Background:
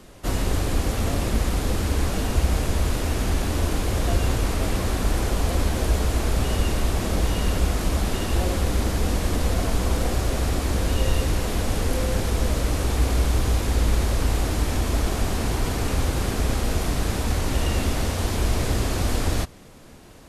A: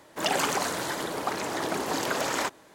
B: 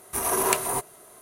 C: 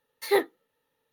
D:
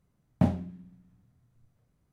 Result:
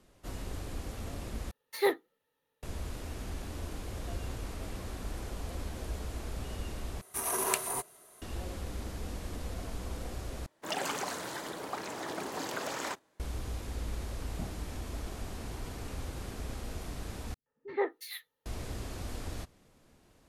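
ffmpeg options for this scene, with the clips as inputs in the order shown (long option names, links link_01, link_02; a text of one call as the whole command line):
ffmpeg -i bed.wav -i cue0.wav -i cue1.wav -i cue2.wav -i cue3.wav -filter_complex "[3:a]asplit=2[link_01][link_02];[0:a]volume=-16.5dB[link_03];[2:a]equalizer=frequency=5300:width=0.31:gain=4[link_04];[1:a]agate=range=-8dB:threshold=-44dB:ratio=16:release=100:detection=peak[link_05];[link_02]acrossover=split=260|2300[link_06][link_07][link_08];[link_07]adelay=120[link_09];[link_08]adelay=450[link_10];[link_06][link_09][link_10]amix=inputs=3:normalize=0[link_11];[link_03]asplit=5[link_12][link_13][link_14][link_15][link_16];[link_12]atrim=end=1.514[link_17];[link_01]atrim=end=1.12,asetpts=PTS-STARTPTS,volume=-4.5dB[link_18];[link_13]atrim=start=2.626:end=7.014[link_19];[link_04]atrim=end=1.21,asetpts=PTS-STARTPTS,volume=-9.5dB[link_20];[link_14]atrim=start=8.216:end=10.464[link_21];[link_05]atrim=end=2.74,asetpts=PTS-STARTPTS,volume=-8.5dB[link_22];[link_15]atrim=start=13.196:end=17.344[link_23];[link_11]atrim=end=1.12,asetpts=PTS-STARTPTS,volume=-6.5dB[link_24];[link_16]atrim=start=18.456[link_25];[4:a]atrim=end=2.12,asetpts=PTS-STARTPTS,volume=-18dB,afade=type=in:duration=0.004:curve=hsin,afade=type=out:start_time=2.116:duration=0.004:curve=hsin,adelay=13980[link_26];[link_17][link_18]acrossfade=duration=0.004:curve1=hsin:curve2=hsin[link_27];[link_27][link_19]acrossfade=duration=0.004:curve1=hsin:curve2=hsin[link_28];[link_28][link_20]acrossfade=duration=0.004:curve1=hsin:curve2=hsin[link_29];[link_29][link_21]acrossfade=duration=0.004:curve1=hsin:curve2=hsin[link_30];[link_30][link_22]acrossfade=duration=0.004:curve1=hsin:curve2=hsin[link_31];[link_31][link_23]acrossfade=duration=0.004:curve1=hsin:curve2=hsin[link_32];[link_32][link_24]acrossfade=duration=0.004:curve1=hsin:curve2=hsin[link_33];[link_33][link_25]acrossfade=duration=0.004:curve1=hsin:curve2=hsin[link_34];[link_34][link_26]amix=inputs=2:normalize=0" out.wav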